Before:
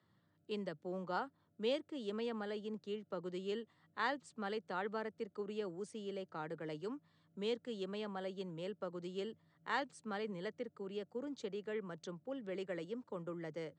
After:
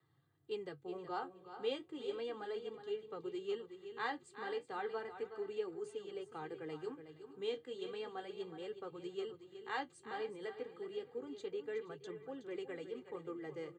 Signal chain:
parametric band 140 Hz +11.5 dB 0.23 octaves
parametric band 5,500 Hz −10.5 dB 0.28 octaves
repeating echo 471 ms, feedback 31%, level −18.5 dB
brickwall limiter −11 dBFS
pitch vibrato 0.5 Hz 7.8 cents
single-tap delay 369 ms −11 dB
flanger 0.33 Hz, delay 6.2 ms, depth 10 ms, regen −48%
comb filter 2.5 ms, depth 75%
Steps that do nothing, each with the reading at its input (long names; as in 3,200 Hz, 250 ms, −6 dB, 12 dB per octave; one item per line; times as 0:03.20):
brickwall limiter −11 dBFS: peak of its input −22.5 dBFS